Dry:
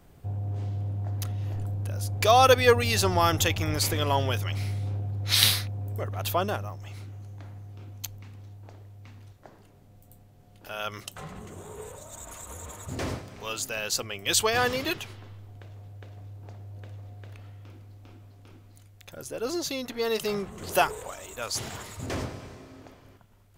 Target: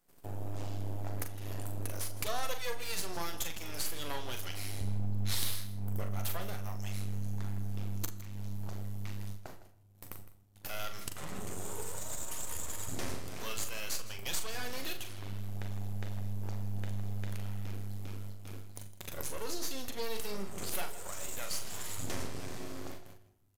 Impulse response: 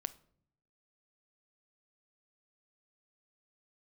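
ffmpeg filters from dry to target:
-filter_complex "[0:a]aemphasis=mode=production:type=50kf,agate=range=-22dB:threshold=-50dB:ratio=16:detection=peak,asetnsamples=nb_out_samples=441:pad=0,asendcmd='4.81 highpass f 66',highpass=200,acompressor=threshold=-42dB:ratio=4,aeval=exprs='max(val(0),0)':channel_layout=same,asplit=2[link_01][link_02];[link_02]adelay=41,volume=-8dB[link_03];[link_01][link_03]amix=inputs=2:normalize=0,aecho=1:1:160:0.158[link_04];[1:a]atrim=start_sample=2205,asetrate=26019,aresample=44100[link_05];[link_04][link_05]afir=irnorm=-1:irlink=0,volume=5.5dB"

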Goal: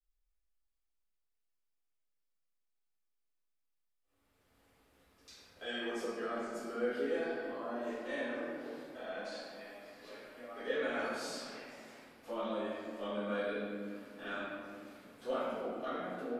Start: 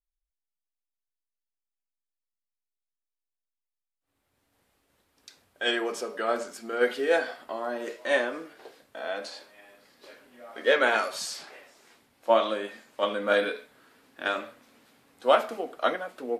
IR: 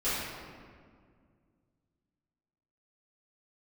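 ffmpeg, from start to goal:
-filter_complex "[0:a]acrossover=split=220[link_01][link_02];[link_02]acompressor=threshold=-49dB:ratio=2[link_03];[link_01][link_03]amix=inputs=2:normalize=0[link_04];[1:a]atrim=start_sample=2205[link_05];[link_04][link_05]afir=irnorm=-1:irlink=0,volume=-8dB"

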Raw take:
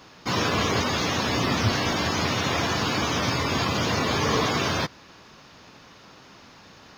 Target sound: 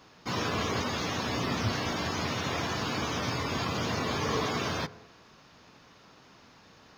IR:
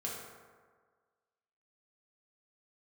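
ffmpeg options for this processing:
-filter_complex "[0:a]asplit=2[link_01][link_02];[1:a]atrim=start_sample=2205,afade=type=out:start_time=0.32:duration=0.01,atrim=end_sample=14553,lowpass=2300[link_03];[link_02][link_03]afir=irnorm=-1:irlink=0,volume=-14.5dB[link_04];[link_01][link_04]amix=inputs=2:normalize=0,volume=-7.5dB"

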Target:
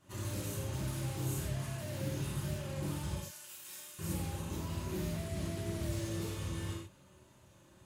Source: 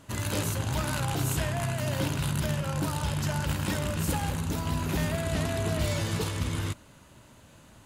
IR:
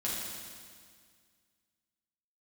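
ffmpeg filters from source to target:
-filter_complex "[0:a]asettb=1/sr,asplit=3[link_01][link_02][link_03];[link_01]atrim=end=3.154[link_04];[link_02]atrim=start=3.15:end=3.99,asetpts=PTS-STARTPTS,afade=type=in:duration=0.004:curve=qsin,afade=type=out:start_time=0.836:duration=0.004:curve=qsin,aderivative[link_05];[link_03]atrim=start=3.986[link_06];[link_04][link_05]acrossfade=duration=0.004:curve1=hsin:curve2=qsin[link_07];[link_07][link_06]acrossfade=duration=0.004:curve1=qsin:curve2=hsin[link_08];[1:a]atrim=start_sample=2205,afade=type=out:start_time=0.31:duration=0.01,atrim=end_sample=14112,asetrate=74970,aresample=44100[link_09];[link_08][link_09]afir=irnorm=-1:irlink=0,acrossover=split=500|6200[link_10][link_11][link_12];[link_11]aeval=exprs='0.015*(abs(mod(val(0)/0.015+3,4)-2)-1)':channel_layout=same[link_13];[link_10][link_13][link_12]amix=inputs=3:normalize=0,volume=-8.5dB"

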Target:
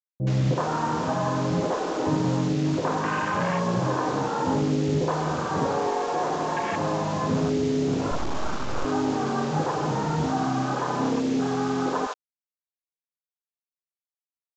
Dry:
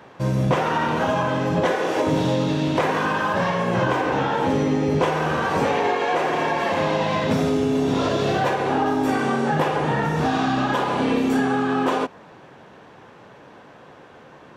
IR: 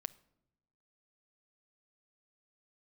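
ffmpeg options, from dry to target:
-filter_complex "[1:a]atrim=start_sample=2205,afade=type=out:start_time=0.36:duration=0.01,atrim=end_sample=16317[link_01];[0:a][link_01]afir=irnorm=-1:irlink=0,asettb=1/sr,asplit=3[link_02][link_03][link_04];[link_02]atrim=end=8.114[link_05];[link_03]atrim=start=8.11:end=8.85,asetpts=PTS-STARTPTS,afade=type=in:duration=0.004:curve=qsin,afade=type=out:start_time=0.736:duration=0.004:curve=qsin,aeval=exprs='abs(val(0))':channel_layout=same[link_06];[link_04]atrim=start=8.846[link_07];[link_05][link_06]acrossfade=duration=0.004:curve1=hsin:curve2=qsin[link_08];[link_08][link_07]acrossfade=duration=0.004:curve1=qsin:curve2=hsin,afwtdn=0.0501,acrusher=bits=5:mix=0:aa=0.000001,aresample=16000,aresample=44100,acrossover=split=570[link_09][link_10];[link_10]adelay=70[link_11];[link_09][link_11]amix=inputs=2:normalize=0"

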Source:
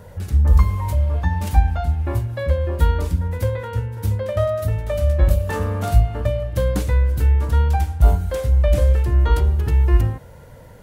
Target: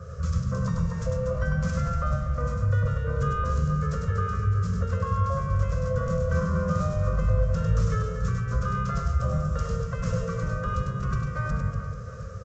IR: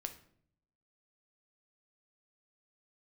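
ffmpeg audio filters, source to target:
-filter_complex "[0:a]highpass=92,bandreject=frequency=950:width=10,afftfilt=real='re*lt(hypot(re,im),0.501)':imag='im*lt(hypot(re,im),0.501)':win_size=1024:overlap=0.75,firequalizer=gain_entry='entry(200,0);entry(350,-24);entry(610,6);entry(930,-27);entry(1300,11);entry(2100,-7);entry(4200,-7);entry(6000,3)':delay=0.05:min_phase=1,acrossover=split=210[link_01][link_02];[link_01]acontrast=70[link_03];[link_02]alimiter=level_in=1dB:limit=-24dB:level=0:latency=1:release=222,volume=-1dB[link_04];[link_03][link_04]amix=inputs=2:normalize=0,asetrate=38367,aresample=44100,acrusher=bits=11:mix=0:aa=0.000001,asplit=2[link_05][link_06];[link_06]asetrate=55563,aresample=44100,atempo=0.793701,volume=-15dB[link_07];[link_05][link_07]amix=inputs=2:normalize=0,asplit=2[link_08][link_09];[link_09]aecho=0:1:100|240|436|710.4|1095:0.631|0.398|0.251|0.158|0.1[link_10];[link_08][link_10]amix=inputs=2:normalize=0,aresample=16000,aresample=44100,adynamicequalizer=threshold=0.00447:dfrequency=2600:dqfactor=0.7:tfrequency=2600:tqfactor=0.7:attack=5:release=100:ratio=0.375:range=2:mode=cutabove:tftype=highshelf"

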